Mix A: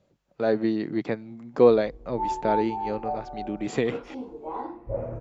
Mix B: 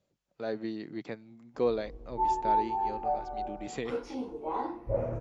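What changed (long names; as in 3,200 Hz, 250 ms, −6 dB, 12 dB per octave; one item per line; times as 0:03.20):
speech −11.5 dB
master: add high-shelf EQ 3,000 Hz +8.5 dB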